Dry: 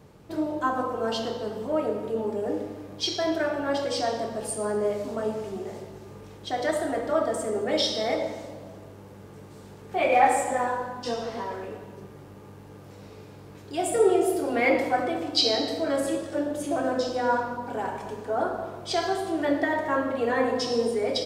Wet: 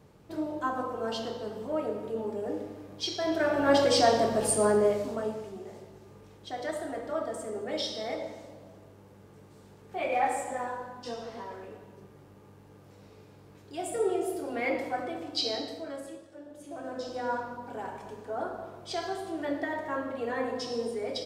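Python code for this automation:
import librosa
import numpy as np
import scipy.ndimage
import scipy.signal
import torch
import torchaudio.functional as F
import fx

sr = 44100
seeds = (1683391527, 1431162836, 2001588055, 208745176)

y = fx.gain(x, sr, db=fx.line((3.18, -5.0), (3.74, 5.0), (4.64, 5.0), (5.54, -8.0), (15.58, -8.0), (16.38, -20.0), (17.18, -7.5)))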